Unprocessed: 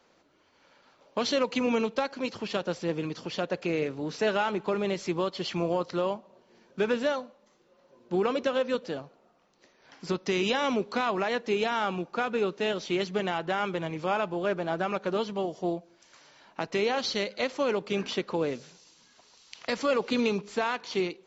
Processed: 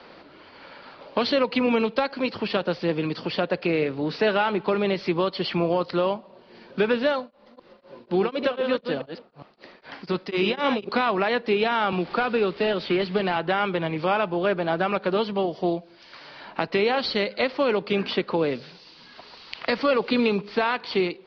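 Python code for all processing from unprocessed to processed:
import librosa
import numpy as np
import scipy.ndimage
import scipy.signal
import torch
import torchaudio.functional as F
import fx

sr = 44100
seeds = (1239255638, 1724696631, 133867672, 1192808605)

y = fx.chain(x, sr, fx.reverse_delay(ms=203, wet_db=-7.0),
    fx.tremolo_abs(hz=4.0), at=(7.19, 10.89))
y = fx.chain(y, sr, fx.delta_mod(bps=64000, step_db=-44.0),
    fx.lowpass(hz=5200.0, slope=24),
    fx.band_squash(depth_pct=40), at=(11.92, 13.36))
y = scipy.signal.sosfilt(scipy.signal.ellip(4, 1.0, 40, 4800.0, 'lowpass', fs=sr, output='sos'), y)
y = fx.band_squash(y, sr, depth_pct=40)
y = y * librosa.db_to_amplitude(6.0)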